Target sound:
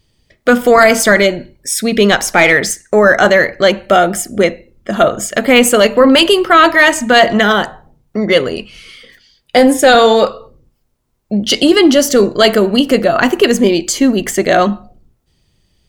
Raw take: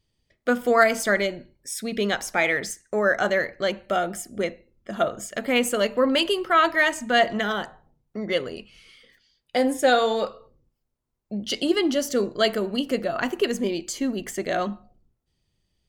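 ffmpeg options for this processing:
-filter_complex "[0:a]asettb=1/sr,asplit=3[a][b][c];[a]atrim=end=2.114[d];[b]atrim=start=2.11:end=2.53,asetpts=PTS-STARTPTS,afade=t=in:d=0.004:c=qsin,afade=t=out:st=0.416:d=0.004:c=qsin,aeval=exprs='0.316*(cos(1*acos(clip(val(0)/0.316,-1,1)))-cos(1*PI/2))+0.0141*(cos(4*acos(clip(val(0)/0.316,-1,1)))-cos(4*PI/2))':c=same[e];[c]atrim=start=2.526[f];[d][e]acrossfade=d=0.004:c1=hsin:c2=qsin[g];[g][f]acrossfade=d=0.004:c1=qsin:c2=hsin,apsyclip=16.5dB,volume=-1.5dB"

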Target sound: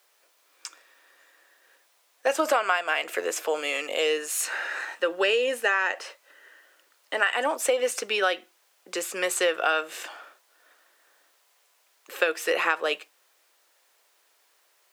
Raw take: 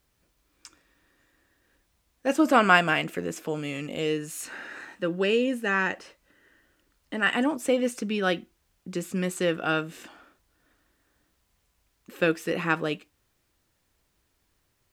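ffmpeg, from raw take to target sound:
-af "highpass=f=490:w=0.5412,highpass=f=490:w=1.3066,acompressor=threshold=-28dB:ratio=20,volume=9dB"

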